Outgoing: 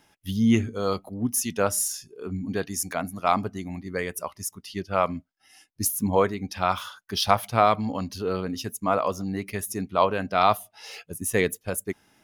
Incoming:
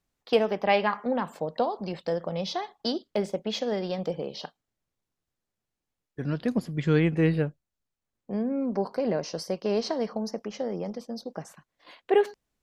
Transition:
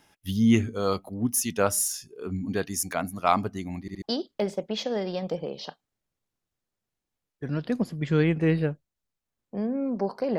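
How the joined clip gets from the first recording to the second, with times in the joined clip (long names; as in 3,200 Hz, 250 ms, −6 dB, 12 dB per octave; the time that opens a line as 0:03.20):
outgoing
0:03.81: stutter in place 0.07 s, 3 plays
0:04.02: continue with incoming from 0:02.78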